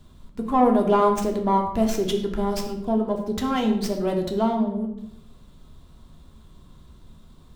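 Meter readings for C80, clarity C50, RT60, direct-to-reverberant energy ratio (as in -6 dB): 10.0 dB, 7.0 dB, 0.75 s, 2.0 dB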